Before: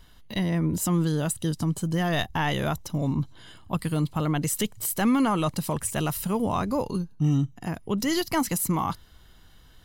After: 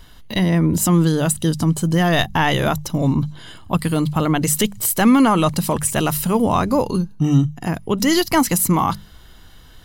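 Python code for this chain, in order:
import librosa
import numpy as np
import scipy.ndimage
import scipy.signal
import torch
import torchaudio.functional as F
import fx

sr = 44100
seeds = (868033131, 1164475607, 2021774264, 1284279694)

y = fx.hum_notches(x, sr, base_hz=50, count=4)
y = y * librosa.db_to_amplitude(9.0)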